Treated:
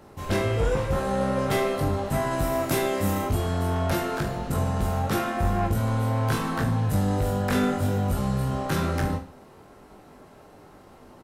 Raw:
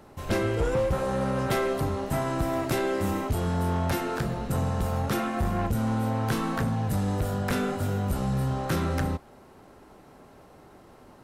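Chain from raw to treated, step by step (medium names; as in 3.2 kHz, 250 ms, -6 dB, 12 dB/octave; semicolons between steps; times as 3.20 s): 2.31–3.26 s: treble shelf 9.2 kHz +9.5 dB; on a send: reverse bouncing-ball echo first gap 20 ms, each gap 1.2×, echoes 5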